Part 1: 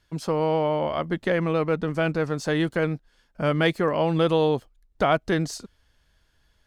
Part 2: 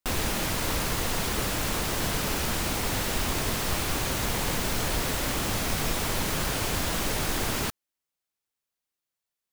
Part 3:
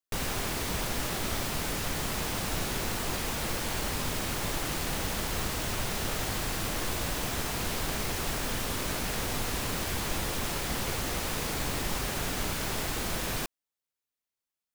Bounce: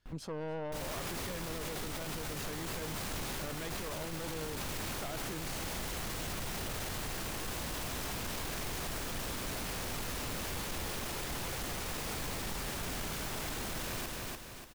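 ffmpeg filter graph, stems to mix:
ffmpeg -i stem1.wav -i stem2.wav -i stem3.wav -filter_complex "[0:a]aeval=exprs='(tanh(14.1*val(0)+0.5)-tanh(0.5))/14.1':channel_layout=same,volume=-7.5dB,asplit=3[link_01][link_02][link_03];[link_02]volume=-21.5dB[link_04];[1:a]bass=frequency=250:gain=13,treble=frequency=4000:gain=-14,alimiter=limit=-20.5dB:level=0:latency=1,volume=-19dB[link_05];[2:a]asoftclip=type=tanh:threshold=-28.5dB,adelay=600,volume=-0.5dB,asplit=2[link_06][link_07];[link_07]volume=-6.5dB[link_08];[link_03]apad=whole_len=420108[link_09];[link_05][link_09]sidechaincompress=threshold=-52dB:ratio=8:attack=16:release=390[link_10];[link_04][link_08]amix=inputs=2:normalize=0,aecho=0:1:292|584|876|1168|1460|1752:1|0.44|0.194|0.0852|0.0375|0.0165[link_11];[link_01][link_10][link_06][link_11]amix=inputs=4:normalize=0,alimiter=level_in=7dB:limit=-24dB:level=0:latency=1:release=22,volume=-7dB" out.wav

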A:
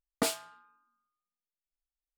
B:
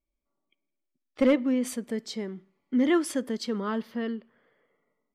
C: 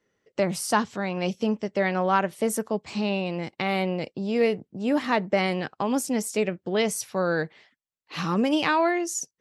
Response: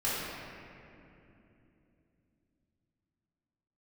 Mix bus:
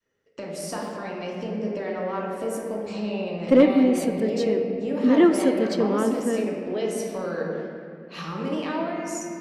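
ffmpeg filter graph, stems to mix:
-filter_complex "[0:a]acrossover=split=3200[link_01][link_02];[link_02]acompressor=threshold=-38dB:ratio=4:attack=1:release=60[link_03];[link_01][link_03]amix=inputs=2:normalize=0,tremolo=f=1.1:d=0.8,adelay=600,volume=-12dB[link_04];[1:a]adelay=2300,volume=-0.5dB,asplit=2[link_05][link_06];[link_06]volume=-17dB[link_07];[2:a]bandreject=frequency=50:width_type=h:width=6,bandreject=frequency=100:width_type=h:width=6,bandreject=frequency=150:width_type=h:width=6,bandreject=frequency=200:width_type=h:width=6,bandreject=frequency=250:width_type=h:width=6,bandreject=frequency=300:width_type=h:width=6,bandreject=frequency=350:width_type=h:width=6,acompressor=threshold=-29dB:ratio=4,volume=-8.5dB,asplit=2[link_08][link_09];[link_09]volume=-3.5dB[link_10];[3:a]atrim=start_sample=2205[link_11];[link_07][link_10]amix=inputs=2:normalize=0[link_12];[link_12][link_11]afir=irnorm=-1:irlink=0[link_13];[link_04][link_05][link_08][link_13]amix=inputs=4:normalize=0,adynamicequalizer=threshold=0.0126:dfrequency=430:dqfactor=0.79:tfrequency=430:tqfactor=0.79:attack=5:release=100:ratio=0.375:range=4:mode=boostabove:tftype=bell"

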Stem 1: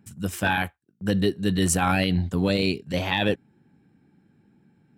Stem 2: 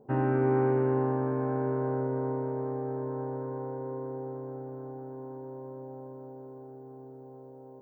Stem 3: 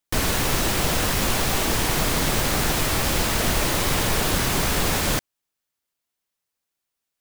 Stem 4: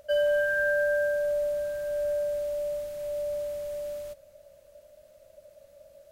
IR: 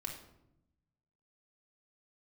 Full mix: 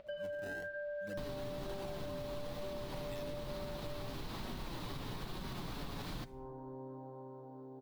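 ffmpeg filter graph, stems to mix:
-filter_complex "[0:a]lowpass=7100,highshelf=frequency=4100:gain=7,acrusher=samples=22:mix=1:aa=0.000001:lfo=1:lforange=35.2:lforate=0.56,volume=-19.5dB,asplit=2[link_01][link_02];[link_02]volume=-14.5dB[link_03];[1:a]adelay=1150,volume=-7.5dB[link_04];[2:a]lowshelf=frequency=360:gain=10,adelay=1050,volume=-13.5dB,asplit=2[link_05][link_06];[link_06]volume=-15.5dB[link_07];[3:a]lowpass=frequency=4000:width=0.5412,lowpass=frequency=4000:width=1.3066,alimiter=level_in=4dB:limit=-24dB:level=0:latency=1,volume=-4dB,volume=-1.5dB[link_08];[link_04][link_05]amix=inputs=2:normalize=0,equalizer=frequency=125:width_type=o:width=1:gain=4,equalizer=frequency=250:width_type=o:width=1:gain=7,equalizer=frequency=1000:width_type=o:width=1:gain=10,equalizer=frequency=4000:width_type=o:width=1:gain=12,equalizer=frequency=8000:width_type=o:width=1:gain=-8,alimiter=level_in=1dB:limit=-24dB:level=0:latency=1:release=253,volume=-1dB,volume=0dB[link_09];[4:a]atrim=start_sample=2205[link_10];[link_03][link_07]amix=inputs=2:normalize=0[link_11];[link_11][link_10]afir=irnorm=-1:irlink=0[link_12];[link_01][link_08][link_09][link_12]amix=inputs=4:normalize=0,acompressor=mode=upward:threshold=-50dB:ratio=2.5,flanger=delay=5.3:depth=1.9:regen=-43:speed=1.1:shape=sinusoidal,acompressor=threshold=-39dB:ratio=6"

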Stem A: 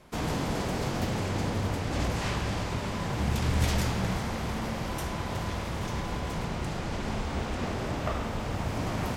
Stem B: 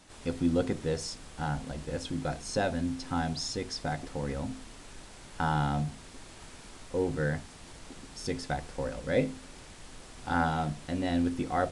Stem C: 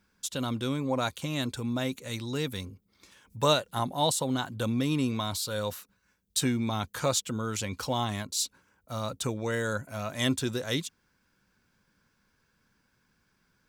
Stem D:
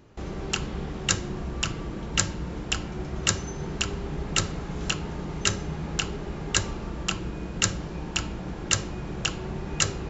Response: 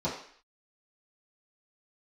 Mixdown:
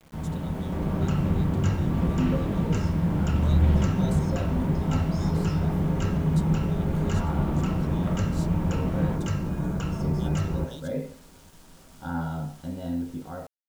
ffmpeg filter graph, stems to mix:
-filter_complex "[0:a]acrossover=split=3400[link_01][link_02];[link_02]acompressor=threshold=-58dB:ratio=4:attack=1:release=60[link_03];[link_01][link_03]amix=inputs=2:normalize=0,lowshelf=frequency=330:gain=8.5,volume=-11.5dB,asplit=2[link_04][link_05];[link_05]volume=-11.5dB[link_06];[1:a]adelay=1750,volume=-9.5dB,asplit=2[link_07][link_08];[link_08]volume=-11.5dB[link_09];[2:a]volume=-16dB[link_10];[3:a]highshelf=frequency=2800:width_type=q:width=1.5:gain=-6,acrossover=split=160[link_11][link_12];[link_12]acompressor=threshold=-40dB:ratio=2[link_13];[link_11][link_13]amix=inputs=2:normalize=0,adelay=550,volume=0dB,asplit=2[link_14][link_15];[link_15]volume=-9.5dB[link_16];[link_07][link_10][link_14]amix=inputs=3:normalize=0,asuperstop=centerf=2200:order=12:qfactor=2.1,acompressor=threshold=-36dB:ratio=6,volume=0dB[link_17];[4:a]atrim=start_sample=2205[link_18];[link_06][link_09][link_16]amix=inputs=3:normalize=0[link_19];[link_19][link_18]afir=irnorm=-1:irlink=0[link_20];[link_04][link_17][link_20]amix=inputs=3:normalize=0,dynaudnorm=framelen=140:gausssize=11:maxgain=3.5dB,acrusher=bits=8:mix=0:aa=0.000001"

